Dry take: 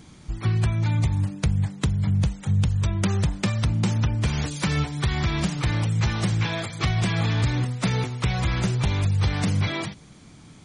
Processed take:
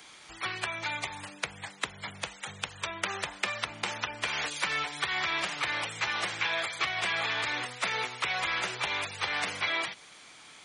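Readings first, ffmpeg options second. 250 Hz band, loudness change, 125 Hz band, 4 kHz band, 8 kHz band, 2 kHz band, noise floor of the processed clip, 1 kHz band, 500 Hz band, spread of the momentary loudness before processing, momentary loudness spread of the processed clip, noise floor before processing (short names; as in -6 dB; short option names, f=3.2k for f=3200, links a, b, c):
-20.5 dB, -7.0 dB, -28.5 dB, +0.5 dB, -3.5 dB, +3.0 dB, -52 dBFS, 0.0 dB, -6.0 dB, 3 LU, 9 LU, -48 dBFS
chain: -filter_complex "[0:a]crystalizer=i=9.5:c=0,acrossover=split=420 3300:gain=0.0794 1 0.141[a][b][c];[a][b][c]amix=inputs=3:normalize=0,acrossover=split=110|260|2800[d][e][f][g];[d]acompressor=threshold=-57dB:ratio=4[h];[e]acompressor=threshold=-49dB:ratio=4[i];[f]acompressor=threshold=-26dB:ratio=4[j];[g]acompressor=threshold=-36dB:ratio=4[k];[h][i][j][k]amix=inputs=4:normalize=0,volume=-2.5dB"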